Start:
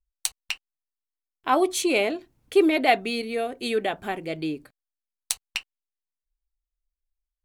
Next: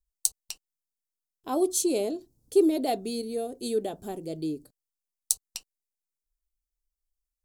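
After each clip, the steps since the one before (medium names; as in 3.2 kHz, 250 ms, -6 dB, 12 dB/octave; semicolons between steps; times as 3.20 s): FFT filter 440 Hz 0 dB, 2.2 kHz -22 dB, 4.9 kHz +1 dB, 7.5 kHz +5 dB; trim -2 dB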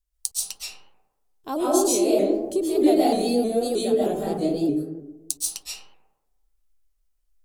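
compression 3:1, threshold -26 dBFS, peak gain reduction 8.5 dB; reverberation RT60 1.1 s, pre-delay 95 ms, DRR -6.5 dB; vibrato with a chosen wave saw up 3.2 Hz, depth 100 cents; trim +2 dB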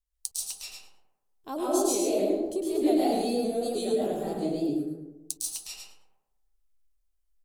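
feedback delay 106 ms, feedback 16%, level -5 dB; trim -6.5 dB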